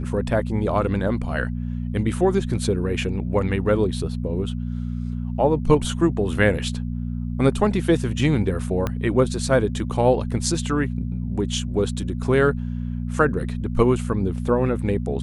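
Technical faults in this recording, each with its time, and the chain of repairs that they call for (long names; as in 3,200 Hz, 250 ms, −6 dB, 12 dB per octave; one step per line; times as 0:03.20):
mains hum 60 Hz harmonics 4 −27 dBFS
0:08.87: click −11 dBFS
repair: click removal
hum removal 60 Hz, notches 4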